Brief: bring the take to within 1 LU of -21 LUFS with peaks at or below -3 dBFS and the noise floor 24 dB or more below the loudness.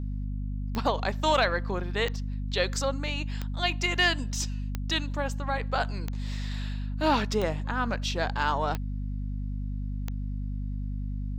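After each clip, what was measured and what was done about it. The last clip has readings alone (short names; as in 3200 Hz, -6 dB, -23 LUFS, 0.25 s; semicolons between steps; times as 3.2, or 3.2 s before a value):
clicks 8; hum 50 Hz; harmonics up to 250 Hz; hum level -29 dBFS; loudness -29.5 LUFS; peak -12.5 dBFS; loudness target -21.0 LUFS
-> de-click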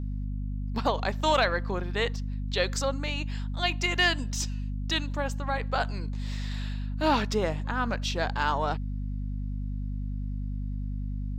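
clicks 0; hum 50 Hz; harmonics up to 250 Hz; hum level -29 dBFS
-> notches 50/100/150/200/250 Hz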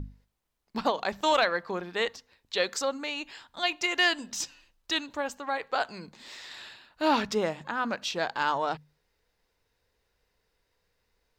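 hum none; loudness -29.5 LUFS; peak -14.0 dBFS; loudness target -21.0 LUFS
-> gain +8.5 dB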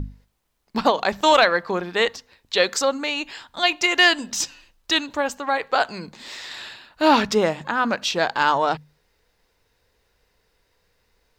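loudness -21.0 LUFS; peak -5.5 dBFS; noise floor -68 dBFS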